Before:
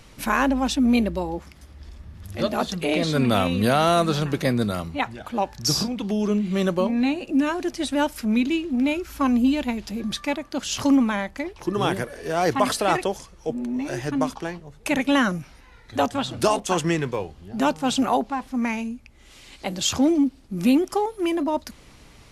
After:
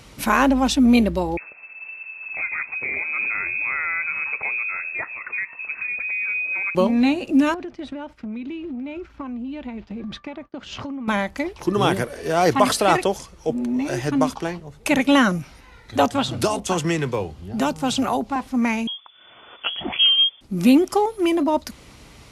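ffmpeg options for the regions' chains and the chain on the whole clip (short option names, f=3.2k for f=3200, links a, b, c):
-filter_complex "[0:a]asettb=1/sr,asplit=3[a][b][c];[a]atrim=end=1.374[d];[b]atrim=start=1.37:end=6.75,asetpts=PTS-STARTPTS,afade=t=in:d=0.004:c=qsin,afade=t=out:st=5.376:d=0.004:c=qsin,acompressor=threshold=-29dB:ratio=2.5:attack=3.2:release=140:knee=1:detection=peak,lowpass=f=2.3k:t=q:w=0.5098,lowpass=f=2.3k:t=q:w=0.6013,lowpass=f=2.3k:t=q:w=0.9,lowpass=f=2.3k:t=q:w=2.563,afreqshift=-2700[e];[c]atrim=start=6.746[f];[d][e]acrossfade=d=0.004:c1=hsin:c2=qsin[g];[g][f]acrossfade=d=0.004:c1=qsin:c2=hsin,asettb=1/sr,asplit=3[h][i][j];[h]atrim=end=7.544[k];[i]atrim=start=7.54:end=11.08,asetpts=PTS-STARTPTS,afade=t=in:d=0.004:c=qsin,afade=t=out:st=3.536:d=0.004:c=qsin,lowpass=2.5k,agate=range=-33dB:threshold=-34dB:ratio=3:release=100:detection=peak,acompressor=threshold=-32dB:ratio=12:attack=3.2:release=140:knee=1:detection=peak[l];[j]atrim=start=11.076[m];[k][l]acrossfade=d=0.004:c1=hsin:c2=qsin[n];[n][m]acrossfade=d=0.004:c1=qsin:c2=hsin,asettb=1/sr,asplit=3[o][p][q];[o]atrim=end=16.284[r];[p]atrim=start=16.28:end=18.36,asetpts=PTS-STARTPTS,afade=t=in:d=0.004:c=qsin,afade=t=out:st=2.076:d=0.004:c=qsin,equalizer=f=85:t=o:w=2:g=6,acrossover=split=120|360|5200[s][t][u][v];[s]acompressor=threshold=-42dB:ratio=3[w];[t]acompressor=threshold=-31dB:ratio=3[x];[u]acompressor=threshold=-26dB:ratio=3[y];[v]acompressor=threshold=-35dB:ratio=3[z];[w][x][y][z]amix=inputs=4:normalize=0[aa];[q]atrim=start=18.356[ab];[r][aa]acrossfade=d=0.004:c1=hsin:c2=qsin[ac];[ac][ab]acrossfade=d=0.004:c1=qsin:c2=hsin,asettb=1/sr,asplit=3[ad][ae][af];[ad]atrim=end=18.874[ag];[ae]atrim=start=18.87:end=20.41,asetpts=PTS-STARTPTS,afade=t=in:d=0.004:c=qsin,afade=t=out:st=1.536:d=0.004:c=qsin,equalizer=f=88:w=0.57:g=-8,lowpass=f=3k:t=q:w=0.5098,lowpass=f=3k:t=q:w=0.6013,lowpass=f=3k:t=q:w=0.9,lowpass=f=3k:t=q:w=2.563,afreqshift=-3500[ah];[af]atrim=start=20.406[ai];[ag][ah]acrossfade=d=0.004:c1=hsin:c2=qsin[aj];[aj][ai]acrossfade=d=0.004:c1=qsin:c2=hsin,highpass=40,bandreject=f=1.7k:w=20,volume=4dB"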